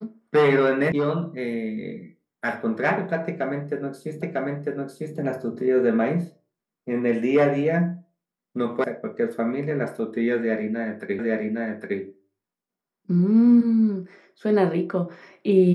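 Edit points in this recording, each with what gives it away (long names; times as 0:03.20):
0:00.92: cut off before it has died away
0:04.22: the same again, the last 0.95 s
0:08.84: cut off before it has died away
0:11.19: the same again, the last 0.81 s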